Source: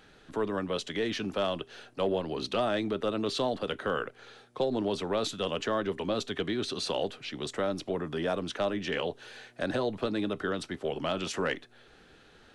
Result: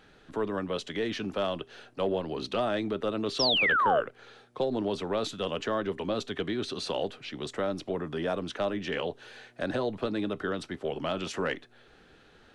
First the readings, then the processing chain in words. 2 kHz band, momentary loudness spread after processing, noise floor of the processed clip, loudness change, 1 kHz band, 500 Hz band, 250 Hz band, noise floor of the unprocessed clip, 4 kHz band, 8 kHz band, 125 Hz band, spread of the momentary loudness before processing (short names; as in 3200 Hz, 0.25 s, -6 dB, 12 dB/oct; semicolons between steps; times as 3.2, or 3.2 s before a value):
+4.5 dB, 11 LU, -58 dBFS, +1.5 dB, +3.0 dB, 0.0 dB, 0.0 dB, -58 dBFS, +2.5 dB, -2.5 dB, 0.0 dB, 6 LU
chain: painted sound fall, 3.39–4.01, 540–5800 Hz -24 dBFS; high shelf 4700 Hz -5 dB